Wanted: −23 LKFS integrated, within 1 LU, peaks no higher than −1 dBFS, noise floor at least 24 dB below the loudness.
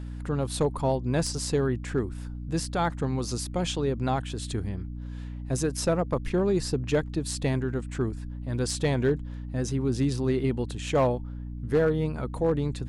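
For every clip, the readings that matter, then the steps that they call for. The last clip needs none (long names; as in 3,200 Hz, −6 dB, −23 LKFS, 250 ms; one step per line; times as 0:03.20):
share of clipped samples 0.5%; peaks flattened at −16.5 dBFS; mains hum 60 Hz; hum harmonics up to 300 Hz; level of the hum −34 dBFS; integrated loudness −28.5 LKFS; sample peak −16.5 dBFS; target loudness −23.0 LKFS
→ clipped peaks rebuilt −16.5 dBFS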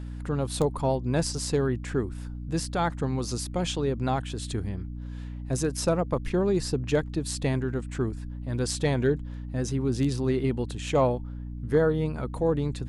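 share of clipped samples 0.0%; mains hum 60 Hz; hum harmonics up to 300 Hz; level of the hum −34 dBFS
→ hum removal 60 Hz, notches 5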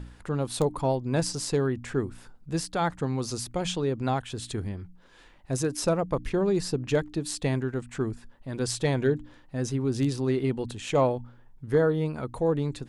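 mains hum none found; integrated loudness −28.5 LKFS; sample peak −11.5 dBFS; target loudness −23.0 LKFS
→ level +5.5 dB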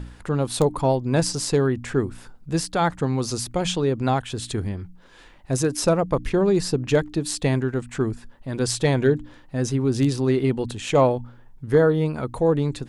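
integrated loudness −23.0 LKFS; sample peak −6.0 dBFS; background noise floor −49 dBFS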